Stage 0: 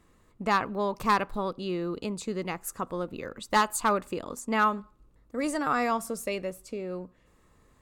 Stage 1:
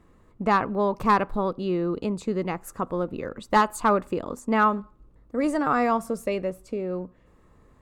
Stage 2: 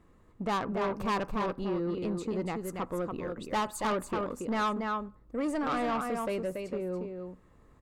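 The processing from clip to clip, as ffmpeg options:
ffmpeg -i in.wav -af "highshelf=frequency=2200:gain=-12,volume=6dB" out.wav
ffmpeg -i in.wav -af "aecho=1:1:283:0.473,asoftclip=type=tanh:threshold=-21.5dB,volume=-4dB" out.wav

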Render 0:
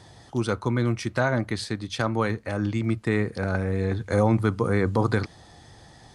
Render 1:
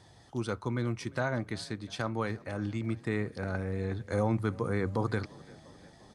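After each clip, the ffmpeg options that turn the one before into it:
ffmpeg -i in.wav -filter_complex "[0:a]asplit=6[link_01][link_02][link_03][link_04][link_05][link_06];[link_02]adelay=349,afreqshift=30,volume=-23dB[link_07];[link_03]adelay=698,afreqshift=60,volume=-27dB[link_08];[link_04]adelay=1047,afreqshift=90,volume=-31dB[link_09];[link_05]adelay=1396,afreqshift=120,volume=-35dB[link_10];[link_06]adelay=1745,afreqshift=150,volume=-39.1dB[link_11];[link_01][link_07][link_08][link_09][link_10][link_11]amix=inputs=6:normalize=0,volume=-8dB" out.wav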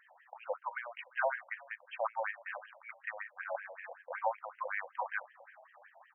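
ffmpeg -i in.wav -af "afftfilt=real='re*between(b*sr/1024,680*pow(2300/680,0.5+0.5*sin(2*PI*5.3*pts/sr))/1.41,680*pow(2300/680,0.5+0.5*sin(2*PI*5.3*pts/sr))*1.41)':imag='im*between(b*sr/1024,680*pow(2300/680,0.5+0.5*sin(2*PI*5.3*pts/sr))/1.41,680*pow(2300/680,0.5+0.5*sin(2*PI*5.3*pts/sr))*1.41)':win_size=1024:overlap=0.75,volume=5dB" out.wav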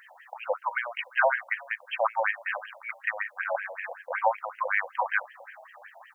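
ffmpeg -i in.wav -af "highshelf=frequency=2700:gain=11,volume=8dB" out.wav

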